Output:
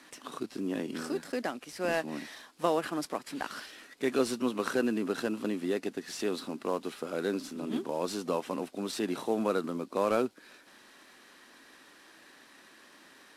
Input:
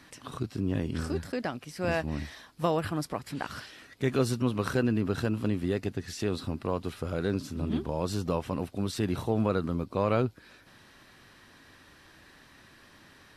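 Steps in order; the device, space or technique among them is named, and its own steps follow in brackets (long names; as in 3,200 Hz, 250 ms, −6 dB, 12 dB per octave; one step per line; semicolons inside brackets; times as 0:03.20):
early wireless headset (high-pass filter 230 Hz 24 dB per octave; variable-slope delta modulation 64 kbit/s)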